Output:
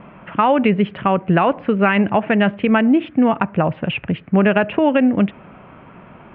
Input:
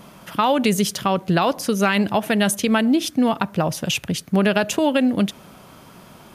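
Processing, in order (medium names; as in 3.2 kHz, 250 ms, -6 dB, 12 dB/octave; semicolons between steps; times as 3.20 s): steep low-pass 2.7 kHz 48 dB/octave; trim +3.5 dB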